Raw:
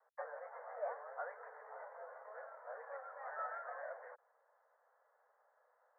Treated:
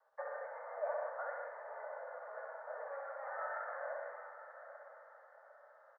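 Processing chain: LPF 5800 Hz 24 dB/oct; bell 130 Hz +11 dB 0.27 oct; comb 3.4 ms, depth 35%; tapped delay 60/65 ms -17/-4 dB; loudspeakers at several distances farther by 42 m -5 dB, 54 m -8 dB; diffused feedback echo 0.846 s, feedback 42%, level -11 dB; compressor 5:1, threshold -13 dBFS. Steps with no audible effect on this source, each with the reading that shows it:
LPF 5800 Hz: input band ends at 2200 Hz; bell 130 Hz: input band starts at 380 Hz; compressor, threshold -13 dBFS: input peak -26.5 dBFS

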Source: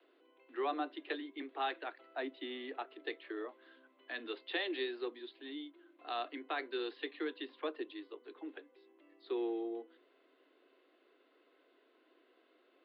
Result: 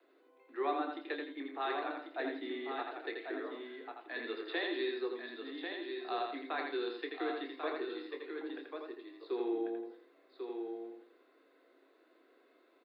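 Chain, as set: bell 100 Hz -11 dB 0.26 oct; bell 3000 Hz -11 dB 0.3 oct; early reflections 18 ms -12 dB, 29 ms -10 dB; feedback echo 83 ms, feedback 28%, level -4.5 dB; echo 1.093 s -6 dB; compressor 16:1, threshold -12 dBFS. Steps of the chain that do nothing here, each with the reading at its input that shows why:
bell 100 Hz: input band starts at 230 Hz; compressor, threshold -12 dBFS: input peak -21.5 dBFS

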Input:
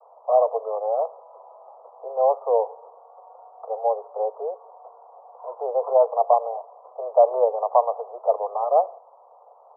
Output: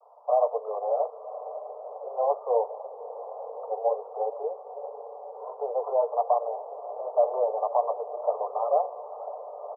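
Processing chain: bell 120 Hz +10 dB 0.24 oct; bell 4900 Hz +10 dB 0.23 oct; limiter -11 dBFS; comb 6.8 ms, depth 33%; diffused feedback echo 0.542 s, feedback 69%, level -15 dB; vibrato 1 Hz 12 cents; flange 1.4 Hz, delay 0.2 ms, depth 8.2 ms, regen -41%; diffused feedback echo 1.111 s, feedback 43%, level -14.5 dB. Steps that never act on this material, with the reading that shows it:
bell 120 Hz: input band starts at 380 Hz; bell 4900 Hz: input band ends at 1200 Hz

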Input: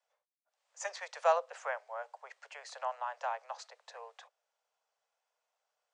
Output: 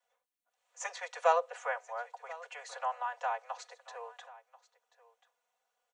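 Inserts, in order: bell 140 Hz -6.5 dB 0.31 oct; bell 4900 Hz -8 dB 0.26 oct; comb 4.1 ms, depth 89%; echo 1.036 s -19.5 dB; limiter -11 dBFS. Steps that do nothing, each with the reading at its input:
bell 140 Hz: input band starts at 400 Hz; limiter -11 dBFS: input peak -13.5 dBFS

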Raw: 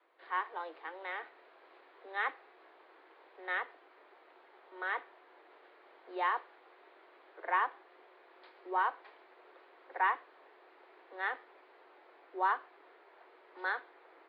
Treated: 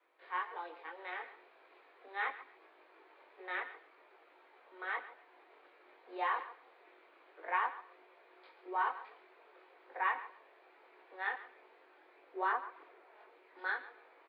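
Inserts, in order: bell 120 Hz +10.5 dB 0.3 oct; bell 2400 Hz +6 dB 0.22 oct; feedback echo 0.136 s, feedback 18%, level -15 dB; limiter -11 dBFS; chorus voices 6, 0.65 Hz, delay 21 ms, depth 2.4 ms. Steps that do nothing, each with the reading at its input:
bell 120 Hz: input band starts at 320 Hz; limiter -11 dBFS: input peak -18.5 dBFS

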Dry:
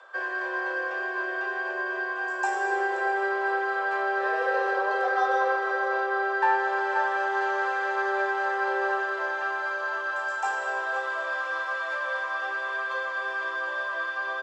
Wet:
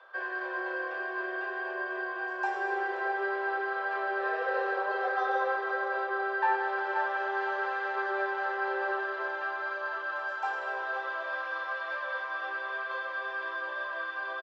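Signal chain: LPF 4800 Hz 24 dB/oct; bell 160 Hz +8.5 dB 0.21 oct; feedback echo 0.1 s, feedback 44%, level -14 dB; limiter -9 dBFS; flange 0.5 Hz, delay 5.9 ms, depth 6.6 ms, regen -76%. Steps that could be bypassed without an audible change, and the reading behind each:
bell 160 Hz: input band starts at 320 Hz; limiter -9 dBFS: input peak -12.0 dBFS

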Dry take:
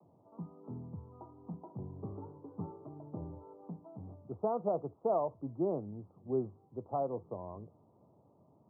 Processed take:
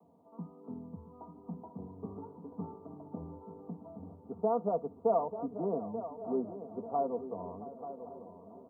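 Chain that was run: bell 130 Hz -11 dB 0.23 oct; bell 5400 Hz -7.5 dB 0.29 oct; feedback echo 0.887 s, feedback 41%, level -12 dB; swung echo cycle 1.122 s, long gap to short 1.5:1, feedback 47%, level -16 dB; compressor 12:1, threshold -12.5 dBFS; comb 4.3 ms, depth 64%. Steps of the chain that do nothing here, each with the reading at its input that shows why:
bell 5400 Hz: input band ends at 1300 Hz; compressor, threshold -12.5 dBFS: input peak -21.0 dBFS

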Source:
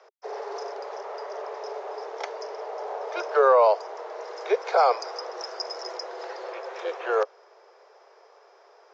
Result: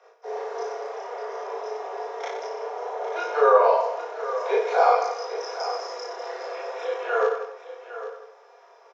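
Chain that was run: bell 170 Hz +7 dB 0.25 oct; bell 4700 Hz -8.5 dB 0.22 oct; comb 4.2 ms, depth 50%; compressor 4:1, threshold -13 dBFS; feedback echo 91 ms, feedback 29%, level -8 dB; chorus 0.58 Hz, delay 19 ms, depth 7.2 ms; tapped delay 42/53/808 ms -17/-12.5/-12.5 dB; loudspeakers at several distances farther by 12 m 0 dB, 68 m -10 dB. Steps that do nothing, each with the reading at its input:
bell 170 Hz: input band starts at 320 Hz

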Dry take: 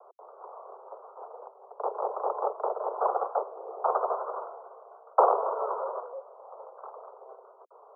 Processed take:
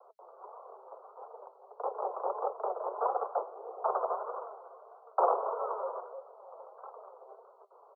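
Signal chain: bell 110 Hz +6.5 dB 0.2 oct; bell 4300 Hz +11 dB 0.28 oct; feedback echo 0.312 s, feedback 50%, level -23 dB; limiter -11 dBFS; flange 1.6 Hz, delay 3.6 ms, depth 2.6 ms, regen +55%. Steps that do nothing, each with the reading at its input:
bell 110 Hz: input band starts at 320 Hz; bell 4300 Hz: input band ends at 1500 Hz

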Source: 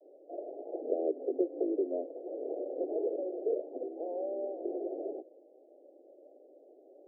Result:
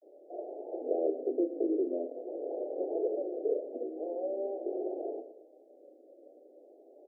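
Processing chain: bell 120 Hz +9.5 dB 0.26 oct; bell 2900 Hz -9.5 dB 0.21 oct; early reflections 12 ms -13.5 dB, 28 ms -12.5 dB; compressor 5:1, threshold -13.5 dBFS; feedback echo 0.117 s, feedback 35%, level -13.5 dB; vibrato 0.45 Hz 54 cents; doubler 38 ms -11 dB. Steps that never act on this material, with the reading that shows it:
bell 120 Hz: input band starts at 240 Hz; bell 2900 Hz: input band ends at 850 Hz; compressor, threshold -13.5 dBFS: input peak -18.0 dBFS

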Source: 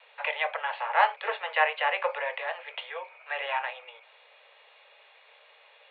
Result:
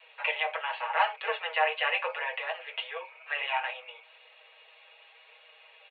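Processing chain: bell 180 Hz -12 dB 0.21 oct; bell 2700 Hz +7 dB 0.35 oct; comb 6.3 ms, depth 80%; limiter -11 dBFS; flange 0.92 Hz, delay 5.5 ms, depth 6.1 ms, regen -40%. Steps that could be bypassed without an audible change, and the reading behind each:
bell 180 Hz: input band starts at 380 Hz

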